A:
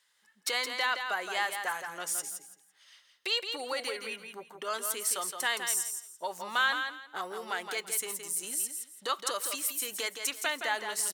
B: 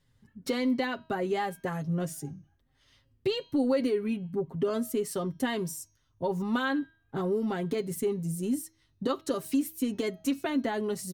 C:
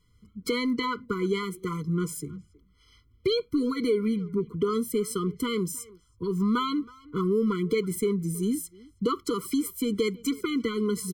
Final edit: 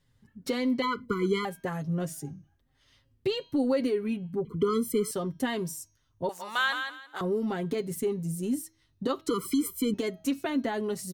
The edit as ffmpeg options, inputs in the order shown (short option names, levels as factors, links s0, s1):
-filter_complex "[2:a]asplit=3[s0][s1][s2];[1:a]asplit=5[s3][s4][s5][s6][s7];[s3]atrim=end=0.822[s8];[s0]atrim=start=0.818:end=1.452[s9];[s4]atrim=start=1.448:end=4.452[s10];[s1]atrim=start=4.448:end=5.112[s11];[s5]atrim=start=5.108:end=6.292[s12];[0:a]atrim=start=6.288:end=7.212[s13];[s6]atrim=start=7.208:end=9.282[s14];[s2]atrim=start=9.278:end=9.942[s15];[s7]atrim=start=9.938[s16];[s8][s9]acrossfade=d=0.004:c1=hsin:c2=hsin[s17];[s17][s10]acrossfade=d=0.004:c1=hsin:c2=hsin[s18];[s18][s11]acrossfade=d=0.004:c1=hsin:c2=hsin[s19];[s19][s12]acrossfade=d=0.004:c1=hsin:c2=hsin[s20];[s20][s13]acrossfade=d=0.004:c1=hsin:c2=hsin[s21];[s21][s14]acrossfade=d=0.004:c1=hsin:c2=hsin[s22];[s22][s15]acrossfade=d=0.004:c1=hsin:c2=hsin[s23];[s23][s16]acrossfade=d=0.004:c1=hsin:c2=hsin"